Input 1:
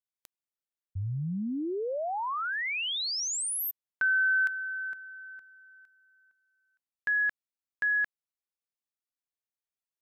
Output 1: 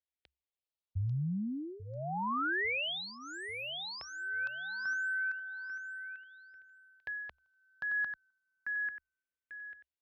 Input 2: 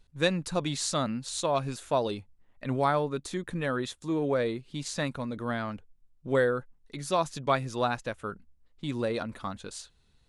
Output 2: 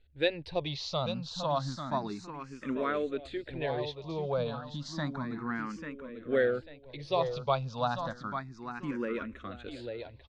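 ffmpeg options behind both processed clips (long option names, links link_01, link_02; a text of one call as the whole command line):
ffmpeg -i in.wav -filter_complex "[0:a]lowpass=frequency=5000:width=0.5412,lowpass=frequency=5000:width=1.3066,equalizer=frequency=68:width_type=o:width=0.29:gain=11,aecho=1:1:843|1686|2529|3372:0.422|0.139|0.0459|0.0152,asplit=2[link_01][link_02];[link_02]afreqshift=0.31[link_03];[link_01][link_03]amix=inputs=2:normalize=1,volume=-1dB" out.wav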